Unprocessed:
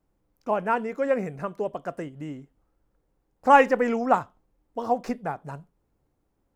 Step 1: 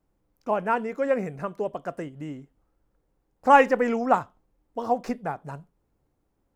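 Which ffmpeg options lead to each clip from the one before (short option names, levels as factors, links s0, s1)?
-af anull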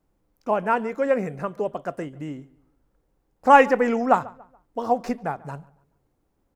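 -filter_complex "[0:a]bandreject=f=60:t=h:w=6,bandreject=f=120:t=h:w=6,asplit=2[s0][s1];[s1]adelay=142,lowpass=f=2800:p=1,volume=0.0841,asplit=2[s2][s3];[s3]adelay=142,lowpass=f=2800:p=1,volume=0.37,asplit=2[s4][s5];[s5]adelay=142,lowpass=f=2800:p=1,volume=0.37[s6];[s0][s2][s4][s6]amix=inputs=4:normalize=0,volume=1.33"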